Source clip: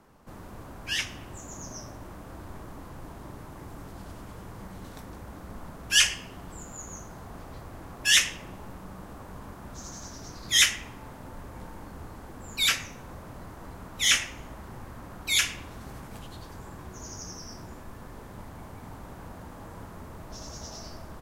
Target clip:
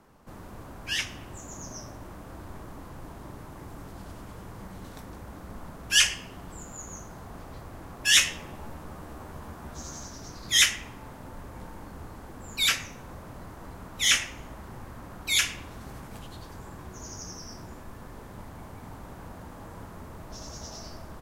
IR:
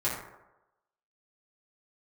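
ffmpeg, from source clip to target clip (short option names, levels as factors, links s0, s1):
-filter_complex "[0:a]asettb=1/sr,asplit=3[s0][s1][s2];[s0]atrim=end=8.144[s3];[s1]atrim=start=8.14:end=10.03,asetpts=PTS-STARTPTS,afade=t=in:d=0.004:c=qsin,afade=t=out:st=1.886:d=0.004:c=qsin,asplit=2[s4][s5];[s5]adelay=13,volume=0.631[s6];[s4][s6]amix=inputs=2:normalize=0,atrim=end_sample=83349[s7];[s2]atrim=start=10.026[s8];[s3][s7]acrossfade=d=0.004:c1=hsin:c2=qsin[s9];[s9][s8]acrossfade=d=0.004:c1=qsin:c2=hsin"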